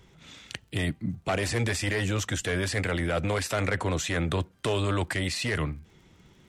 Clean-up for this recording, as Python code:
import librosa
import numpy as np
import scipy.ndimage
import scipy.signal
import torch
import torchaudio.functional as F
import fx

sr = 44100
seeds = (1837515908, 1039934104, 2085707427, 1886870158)

y = fx.fix_declick_ar(x, sr, threshold=6.5)